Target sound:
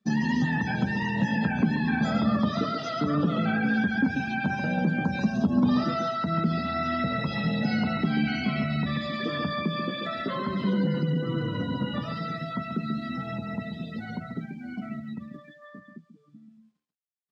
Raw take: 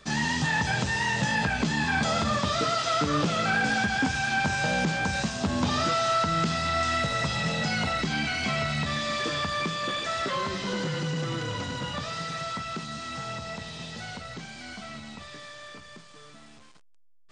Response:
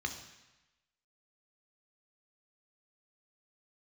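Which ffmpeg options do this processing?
-filter_complex "[0:a]highpass=82,asplit=2[a][b];[b]acrusher=bits=5:mix=0:aa=0.000001,volume=-6.5dB[c];[a][c]amix=inputs=2:normalize=0,acompressor=threshold=-28dB:ratio=2,equalizer=f=220:w=1.1:g=12,asplit=2[d][e];[e]aecho=0:1:137:0.501[f];[d][f]amix=inputs=2:normalize=0,afftdn=nr=27:nf=-32,volume=-4dB"

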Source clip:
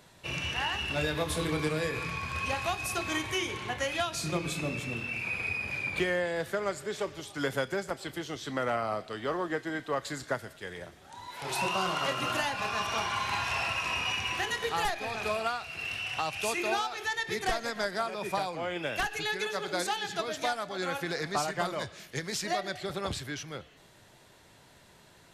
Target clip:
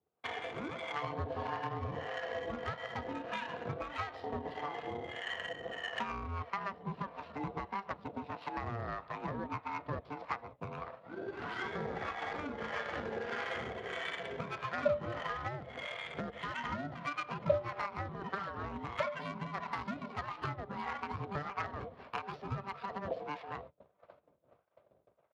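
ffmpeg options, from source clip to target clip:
-filter_complex "[0:a]acompressor=threshold=-44dB:ratio=3,asubboost=boost=4.5:cutoff=70,aecho=1:1:972|1944|2916:0.106|0.035|0.0115,aresample=11025,aresample=44100,agate=range=-32dB:threshold=-53dB:ratio=16:detection=peak,aeval=exprs='val(0)*sin(2*PI*590*n/s)':c=same,adynamicsmooth=sensitivity=6:basefreq=1k,equalizer=f=220:t=o:w=1.4:g=-4,acrossover=split=660[a][b];[a]aeval=exprs='val(0)*(1-0.7/2+0.7/2*cos(2*PI*1.6*n/s))':c=same[c];[b]aeval=exprs='val(0)*(1-0.7/2-0.7/2*cos(2*PI*1.6*n/s))':c=same[d];[c][d]amix=inputs=2:normalize=0,volume=14.5dB" -ar 32000 -c:a libspeex -b:a 36k

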